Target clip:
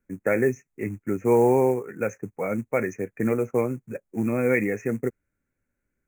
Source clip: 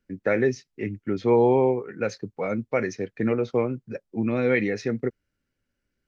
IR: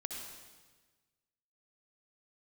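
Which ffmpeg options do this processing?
-af "acrusher=bits=6:mode=log:mix=0:aa=0.000001,asuperstop=centerf=4000:order=12:qfactor=1.1"

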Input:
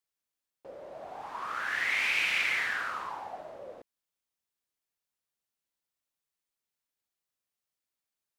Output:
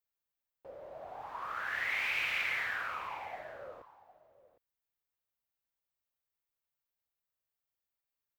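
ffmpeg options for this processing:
-af "firequalizer=gain_entry='entry(100,0);entry(200,-9);entry(360,-8);entry(530,-4);entry(5300,-11);entry(9900,-12);entry(15000,0)':delay=0.05:min_phase=1,aecho=1:1:759:0.141,volume=1.19"

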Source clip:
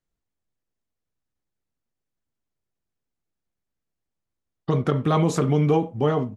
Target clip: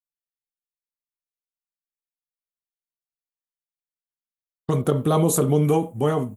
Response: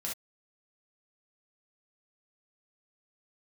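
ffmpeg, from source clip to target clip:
-filter_complex "[0:a]agate=range=0.0224:threshold=0.0282:ratio=3:detection=peak,asettb=1/sr,asplit=3[s0][s1][s2];[s0]atrim=end=4.814[s3];[s1]atrim=start=4.81:end=5.65,asetpts=PTS-STARTPTS,afade=t=in:d=0.004:c=qsin,afade=t=out:st=0.836:d=0.004:c=qsin,equalizer=f=500:t=o:w=1:g=4,equalizer=f=2000:t=o:w=1:g=-8,equalizer=f=4000:t=o:w=1:g=5,equalizer=f=8000:t=o:w=1:g=-7[s4];[s2]atrim=start=5.646[s5];[s3][s4]acrossfade=d=0.004:c1=hsin:c2=qsin[s6];[s6][s5]acrossfade=d=0.004:c1=qsin:c2=hsin,aexciter=amount=10.7:drive=8.5:freq=7600"

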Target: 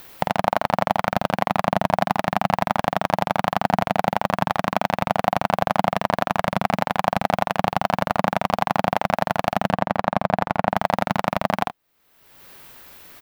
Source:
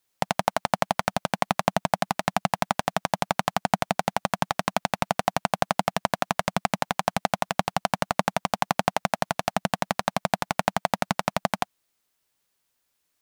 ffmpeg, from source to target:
-filter_complex "[0:a]asplit=2[s0][s1];[s1]aeval=exprs='val(0)*gte(abs(val(0)),0.0708)':c=same,volume=0.501[s2];[s0][s2]amix=inputs=2:normalize=0,asettb=1/sr,asplit=3[s3][s4][s5];[s3]atrim=end=9.704[s6];[s4]atrim=start=9.7:end=10.69,asetpts=PTS-STARTPTS,afade=t=in:d=0.004:c=qsin,afade=t=out:st=0.986:d=0.004:c=qsin,highshelf=f=3400:g=-12[s7];[s5]atrim=start=10.686[s8];[s6][s7]acrossfade=d=0.004:c1=hsin:c2=qsin[s9];[s9][s8]acrossfade=d=0.004:c1=qsin:c2=hsin,acompressor=mode=upward:threshold=0.0708:ratio=2.5,equalizer=f=7600:t=o:w=1.8:g=-13,asplit=2[s10][s11];[s11]aecho=0:1:49|76:0.376|0.126[s12];[s10][s12]amix=inputs=2:normalize=0,alimiter=level_in=2:limit=0.891:release=50:level=0:latency=1,volume=0.891"

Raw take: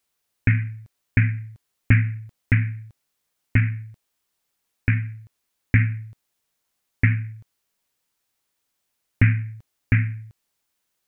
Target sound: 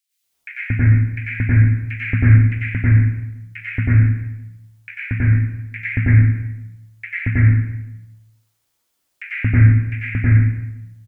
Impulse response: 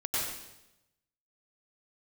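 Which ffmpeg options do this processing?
-filter_complex "[0:a]acrossover=split=1900[s0][s1];[s0]adelay=230[s2];[s2][s1]amix=inputs=2:normalize=0[s3];[1:a]atrim=start_sample=2205[s4];[s3][s4]afir=irnorm=-1:irlink=0,volume=0.891"

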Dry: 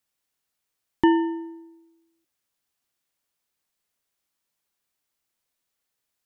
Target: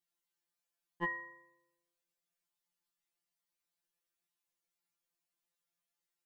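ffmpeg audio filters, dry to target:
-af "aeval=exprs='val(0)*sin(2*PI*100*n/s)':c=same,afftfilt=real='re*2.83*eq(mod(b,8),0)':imag='im*2.83*eq(mod(b,8),0)':win_size=2048:overlap=0.75,volume=0.596"

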